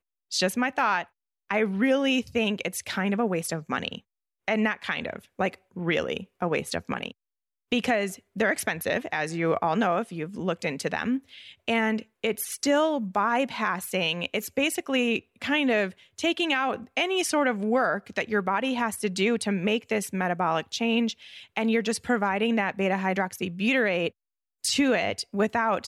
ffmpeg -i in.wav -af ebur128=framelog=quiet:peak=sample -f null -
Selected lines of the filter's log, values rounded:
Integrated loudness:
  I:         -26.6 LUFS
  Threshold: -36.8 LUFS
Loudness range:
  LRA:         3.6 LU
  Threshold: -47.0 LUFS
  LRA low:   -29.4 LUFS
  LRA high:  -25.8 LUFS
Sample peak:
  Peak:      -12.5 dBFS